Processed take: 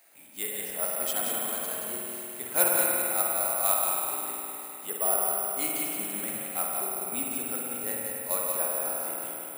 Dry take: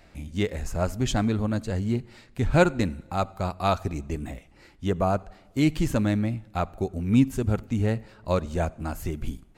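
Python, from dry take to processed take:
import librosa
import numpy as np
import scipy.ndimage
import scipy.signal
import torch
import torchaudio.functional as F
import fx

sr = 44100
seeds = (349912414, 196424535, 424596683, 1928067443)

y = scipy.signal.sosfilt(scipy.signal.butter(2, 560.0, 'highpass', fs=sr, output='sos'), x)
y = fx.high_shelf(y, sr, hz=5900.0, db=9.0)
y = fx.over_compress(y, sr, threshold_db=-38.0, ratio=-0.5, at=(5.81, 6.47), fade=0.02)
y = y + 10.0 ** (-5.5 / 20.0) * np.pad(y, (int(180 * sr / 1000.0), 0))[:len(y)]
y = fx.rev_spring(y, sr, rt60_s=3.5, pass_ms=(50,), chirp_ms=35, drr_db=-3.0)
y = (np.kron(scipy.signal.resample_poly(y, 1, 4), np.eye(4)[0]) * 4)[:len(y)]
y = y * 10.0 ** (-8.0 / 20.0)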